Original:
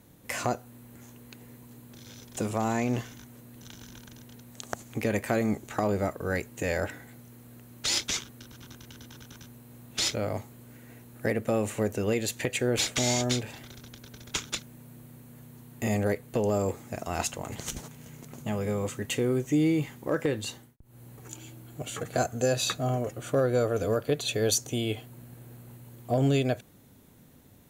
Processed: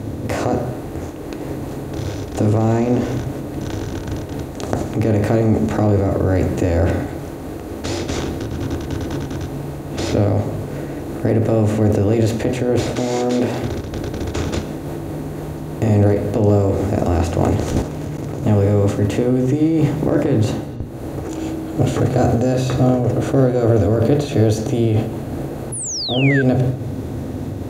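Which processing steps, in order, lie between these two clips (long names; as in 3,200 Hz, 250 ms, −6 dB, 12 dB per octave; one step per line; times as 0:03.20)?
compressor on every frequency bin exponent 0.6
0:12.91–0:13.63: high-pass filter 200 Hz 12 dB per octave
on a send at −7 dB: convolution reverb RT60 1.1 s, pre-delay 3 ms
0:25.72–0:26.42: on the sum: sound drawn into the spectrogram fall 1,500–11,000 Hz −14 dBFS
in parallel at +0.5 dB: compressor whose output falls as the input rises −28 dBFS, ratio −1
on the sum: tilt shelving filter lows +9.5 dB, about 1,100 Hz
mains-hum notches 60/120/180/240/300/360/420/480/540/600 Hz
0:17.82–0:18.43: output level in coarse steps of 23 dB
amplitude modulation by smooth noise, depth 55%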